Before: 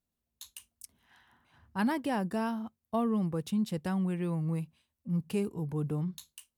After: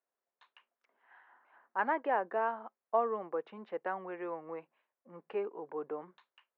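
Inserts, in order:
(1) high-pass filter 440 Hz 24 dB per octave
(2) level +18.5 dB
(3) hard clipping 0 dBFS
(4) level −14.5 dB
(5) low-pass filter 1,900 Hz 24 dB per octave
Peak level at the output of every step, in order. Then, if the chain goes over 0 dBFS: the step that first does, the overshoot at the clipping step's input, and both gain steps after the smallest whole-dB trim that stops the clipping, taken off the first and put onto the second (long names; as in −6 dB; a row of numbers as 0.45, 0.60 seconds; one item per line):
−21.0, −2.5, −2.5, −17.0, −17.0 dBFS
no step passes full scale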